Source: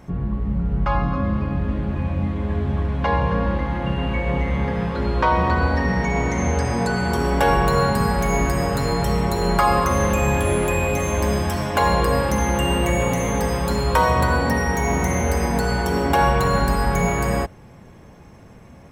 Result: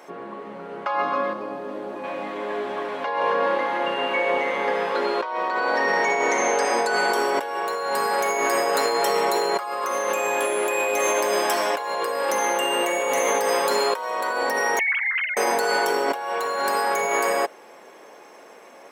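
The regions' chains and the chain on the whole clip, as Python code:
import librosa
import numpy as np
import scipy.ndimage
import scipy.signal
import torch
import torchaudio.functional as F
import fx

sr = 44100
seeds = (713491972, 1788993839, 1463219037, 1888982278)

y = fx.chain(x, sr, fx.highpass(hz=51.0, slope=12),
    fx.peak_eq(hz=2300.0, db=-10.5, octaves=2.1), at=(1.33, 2.04))
y = fx.chain(y, sr, fx.sine_speech(),
    fx.cheby2_highpass(hz=340.0, order=4, stop_db=80),
    fx.doppler_dist(depth_ms=0.25), at=(14.79, 15.37))
y = scipy.signal.sosfilt(scipy.signal.butter(4, 390.0, 'highpass', fs=sr, output='sos'), y)
y = fx.over_compress(y, sr, threshold_db=-26.0, ratio=-1.0)
y = y * librosa.db_to_amplitude(3.0)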